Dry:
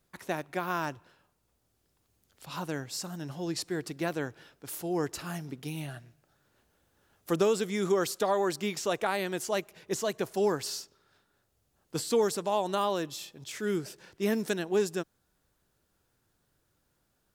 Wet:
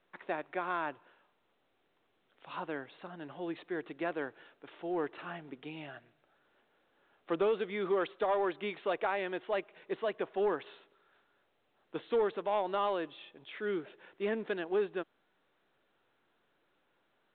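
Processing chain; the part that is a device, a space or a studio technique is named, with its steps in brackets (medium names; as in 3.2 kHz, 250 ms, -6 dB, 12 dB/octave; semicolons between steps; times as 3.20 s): telephone (band-pass 330–3100 Hz; saturation -20.5 dBFS, distortion -20 dB; trim -1 dB; µ-law 64 kbps 8 kHz)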